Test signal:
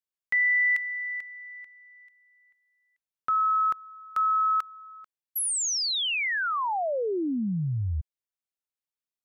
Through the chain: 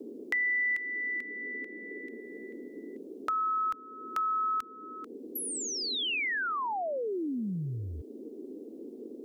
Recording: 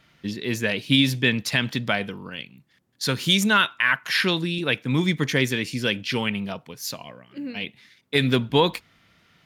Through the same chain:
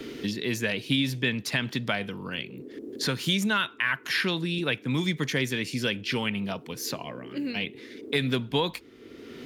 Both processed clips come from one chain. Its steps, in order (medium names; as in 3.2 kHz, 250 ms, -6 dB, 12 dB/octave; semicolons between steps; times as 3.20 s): band noise 230–450 Hz -50 dBFS; three bands compressed up and down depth 70%; trim -5 dB